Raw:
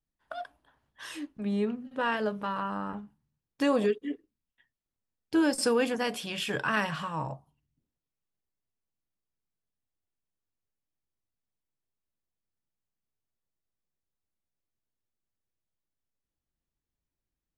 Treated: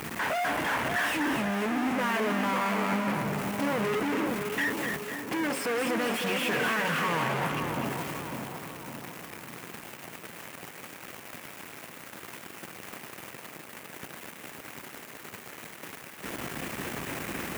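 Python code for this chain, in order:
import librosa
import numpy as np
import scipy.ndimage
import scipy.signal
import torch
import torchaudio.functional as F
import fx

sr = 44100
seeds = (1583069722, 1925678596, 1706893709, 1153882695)

y = np.sign(x) * np.sqrt(np.mean(np.square(x)))
y = scipy.signal.sosfilt(scipy.signal.butter(2, 180.0, 'highpass', fs=sr, output='sos'), y)
y = fx.high_shelf_res(y, sr, hz=3100.0, db=-8.0, q=1.5)
y = fx.echo_split(y, sr, split_hz=1200.0, low_ms=552, high_ms=250, feedback_pct=52, wet_db=-5.5)
y = y * 10.0 ** (7.0 / 20.0)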